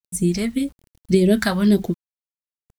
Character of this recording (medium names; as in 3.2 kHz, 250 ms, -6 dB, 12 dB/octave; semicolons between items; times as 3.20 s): phasing stages 2, 1.8 Hz, lowest notch 340–1300 Hz; a quantiser's noise floor 10-bit, dither none